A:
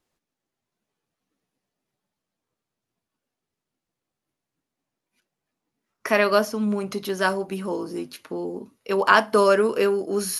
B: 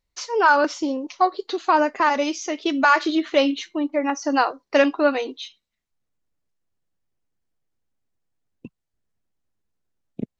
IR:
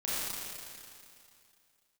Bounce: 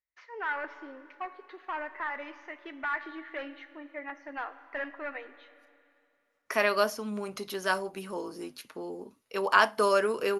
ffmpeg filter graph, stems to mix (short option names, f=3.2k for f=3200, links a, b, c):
-filter_complex "[0:a]adelay=450,volume=-4.5dB[a];[1:a]highpass=63,asoftclip=type=hard:threshold=-14.5dB,lowpass=f=1.9k:t=q:w=4.1,volume=-18dB,asplit=2[b][c];[c]volume=-19dB[d];[2:a]atrim=start_sample=2205[e];[d][e]afir=irnorm=-1:irlink=0[f];[a][b][f]amix=inputs=3:normalize=0,equalizer=f=160:w=0.47:g=-8"